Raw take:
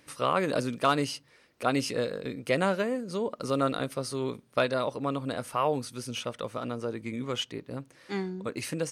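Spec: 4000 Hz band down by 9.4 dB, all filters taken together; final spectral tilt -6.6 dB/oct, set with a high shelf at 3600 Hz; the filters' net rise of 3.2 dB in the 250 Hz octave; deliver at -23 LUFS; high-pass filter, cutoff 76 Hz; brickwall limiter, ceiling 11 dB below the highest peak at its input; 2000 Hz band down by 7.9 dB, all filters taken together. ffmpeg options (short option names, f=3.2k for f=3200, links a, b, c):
-af "highpass=76,equalizer=f=250:t=o:g=4,equalizer=f=2k:t=o:g=-8.5,highshelf=f=3.6k:g=-6.5,equalizer=f=4k:t=o:g=-5,volume=11.5dB,alimiter=limit=-11.5dB:level=0:latency=1"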